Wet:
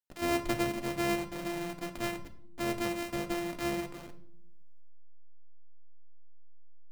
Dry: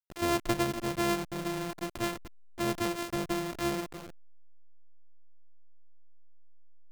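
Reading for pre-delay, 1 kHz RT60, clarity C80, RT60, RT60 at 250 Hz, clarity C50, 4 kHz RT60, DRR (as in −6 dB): 3 ms, 0.60 s, 16.5 dB, 0.70 s, 1.1 s, 13.5 dB, 0.50 s, 5.0 dB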